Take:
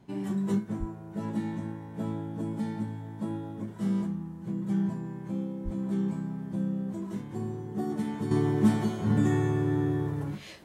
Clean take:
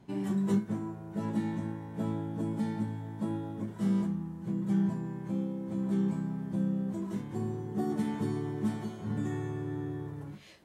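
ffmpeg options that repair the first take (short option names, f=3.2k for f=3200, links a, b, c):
-filter_complex "[0:a]asplit=3[a][b][c];[a]afade=t=out:st=0.79:d=0.02[d];[b]highpass=f=140:w=0.5412,highpass=f=140:w=1.3066,afade=t=in:st=0.79:d=0.02,afade=t=out:st=0.91:d=0.02[e];[c]afade=t=in:st=0.91:d=0.02[f];[d][e][f]amix=inputs=3:normalize=0,asplit=3[g][h][i];[g]afade=t=out:st=5.64:d=0.02[j];[h]highpass=f=140:w=0.5412,highpass=f=140:w=1.3066,afade=t=in:st=5.64:d=0.02,afade=t=out:st=5.76:d=0.02[k];[i]afade=t=in:st=5.76:d=0.02[l];[j][k][l]amix=inputs=3:normalize=0,asetnsamples=n=441:p=0,asendcmd='8.31 volume volume -9dB',volume=0dB"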